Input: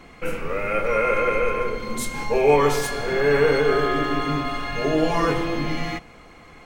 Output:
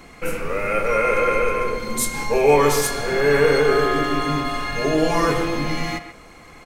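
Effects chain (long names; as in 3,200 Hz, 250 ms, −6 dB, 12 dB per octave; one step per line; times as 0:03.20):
parametric band 3,100 Hz −3 dB 0.46 octaves
downsampling to 32,000 Hz
high-shelf EQ 5,300 Hz +9.5 dB
far-end echo of a speakerphone 130 ms, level −10 dB
level +1.5 dB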